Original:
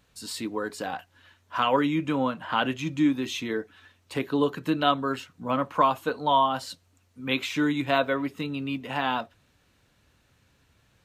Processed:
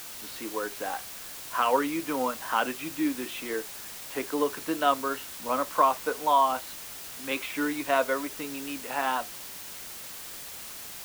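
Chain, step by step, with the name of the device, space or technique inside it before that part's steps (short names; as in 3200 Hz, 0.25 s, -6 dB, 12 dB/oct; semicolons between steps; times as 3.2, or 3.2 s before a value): wax cylinder (BPF 370–2400 Hz; wow and flutter; white noise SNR 11 dB)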